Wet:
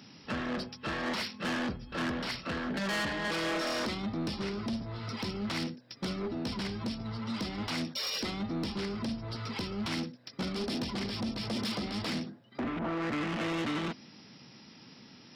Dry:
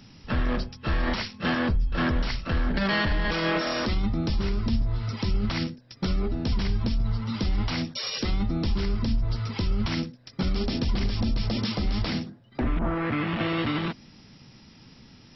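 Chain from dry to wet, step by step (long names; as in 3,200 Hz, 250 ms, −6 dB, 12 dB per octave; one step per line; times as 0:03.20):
high-pass filter 190 Hz 12 dB per octave
soft clipping −29 dBFS, distortion −10 dB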